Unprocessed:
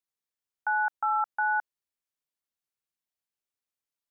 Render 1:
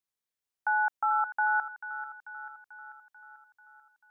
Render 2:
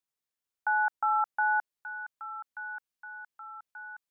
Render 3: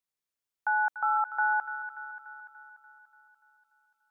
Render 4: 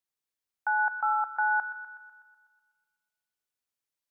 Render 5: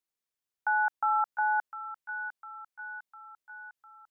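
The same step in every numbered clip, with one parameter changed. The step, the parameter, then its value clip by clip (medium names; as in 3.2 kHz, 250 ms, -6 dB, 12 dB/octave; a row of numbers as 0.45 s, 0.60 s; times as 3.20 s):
feedback echo behind a high-pass, time: 440 ms, 1183 ms, 291 ms, 124 ms, 703 ms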